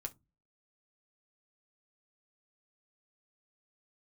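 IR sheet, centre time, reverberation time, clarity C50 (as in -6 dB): 4 ms, no single decay rate, 23.0 dB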